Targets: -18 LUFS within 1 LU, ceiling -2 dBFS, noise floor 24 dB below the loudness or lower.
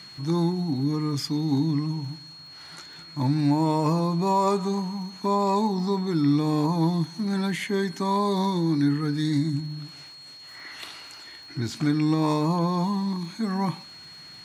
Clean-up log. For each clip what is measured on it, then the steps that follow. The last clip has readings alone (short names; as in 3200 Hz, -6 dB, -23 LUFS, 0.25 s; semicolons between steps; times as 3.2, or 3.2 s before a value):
ticks 54/s; steady tone 4300 Hz; tone level -43 dBFS; loudness -25.0 LUFS; peak -11.5 dBFS; loudness target -18.0 LUFS
-> de-click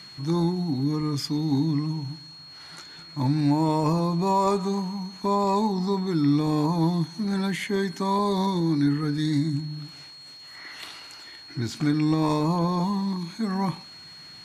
ticks 0.42/s; steady tone 4300 Hz; tone level -43 dBFS
-> notch 4300 Hz, Q 30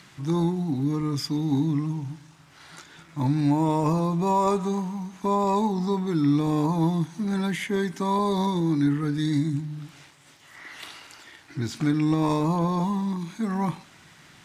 steady tone none; loudness -25.0 LUFS; peak -12.0 dBFS; loudness target -18.0 LUFS
-> gain +7 dB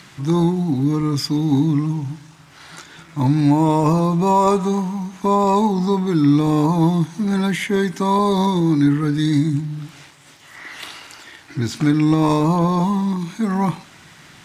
loudness -18.0 LUFS; peak -5.0 dBFS; noise floor -46 dBFS